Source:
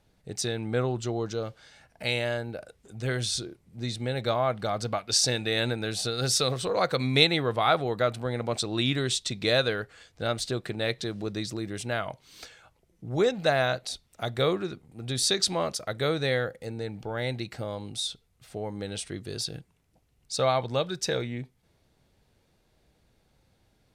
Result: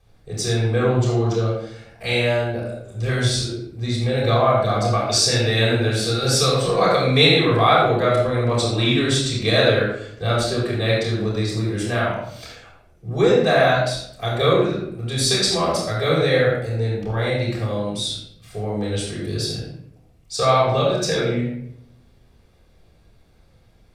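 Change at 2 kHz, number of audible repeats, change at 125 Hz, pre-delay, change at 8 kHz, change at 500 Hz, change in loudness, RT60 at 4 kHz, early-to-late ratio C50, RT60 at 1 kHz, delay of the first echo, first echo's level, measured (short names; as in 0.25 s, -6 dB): +8.0 dB, none, +12.0 dB, 3 ms, +5.0 dB, +9.0 dB, +8.5 dB, 0.50 s, 1.0 dB, 0.65 s, none, none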